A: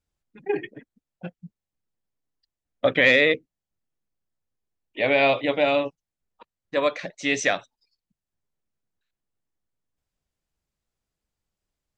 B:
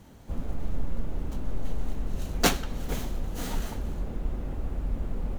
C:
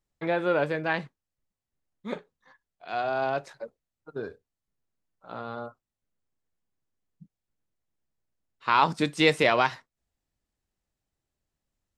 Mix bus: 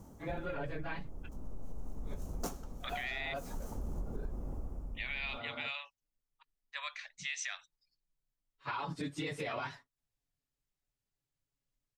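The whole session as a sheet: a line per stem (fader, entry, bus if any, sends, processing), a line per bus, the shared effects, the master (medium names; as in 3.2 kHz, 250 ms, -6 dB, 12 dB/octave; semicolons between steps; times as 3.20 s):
-8.0 dB, 0.00 s, bus A, no send, Bessel high-pass 1.6 kHz, order 6
-0.5 dB, 0.00 s, no bus, no send, high-order bell 2.6 kHz -13 dB; auto duck -14 dB, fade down 0.60 s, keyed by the first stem
-11.0 dB, 0.00 s, bus A, no send, phase randomisation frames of 50 ms; comb 7.1 ms, depth 63%
bus A: 0.0 dB, bass shelf 160 Hz +6 dB; peak limiter -26 dBFS, peak gain reduction 10.5 dB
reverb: none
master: compression 10:1, threshold -34 dBFS, peak gain reduction 12 dB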